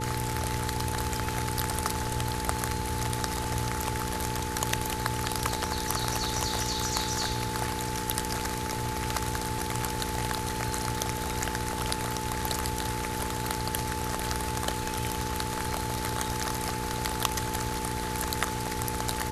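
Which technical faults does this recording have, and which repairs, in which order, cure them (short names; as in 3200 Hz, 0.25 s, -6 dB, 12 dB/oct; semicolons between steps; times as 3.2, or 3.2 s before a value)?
crackle 24/s -41 dBFS
hum 60 Hz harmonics 8 -36 dBFS
tone 870 Hz -35 dBFS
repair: de-click; de-hum 60 Hz, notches 8; notch 870 Hz, Q 30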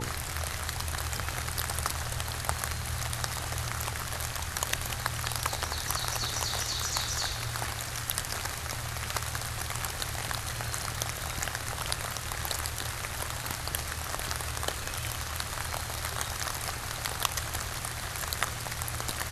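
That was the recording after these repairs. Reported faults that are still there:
none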